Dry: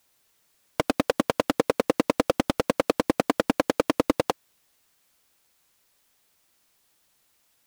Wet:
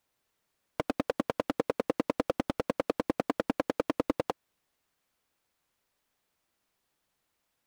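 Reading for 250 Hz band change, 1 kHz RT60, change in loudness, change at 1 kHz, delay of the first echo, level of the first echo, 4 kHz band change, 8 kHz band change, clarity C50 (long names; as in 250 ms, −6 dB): −6.5 dB, no reverb audible, −7.0 dB, −7.5 dB, no echo audible, no echo audible, −11.5 dB, −14.0 dB, no reverb audible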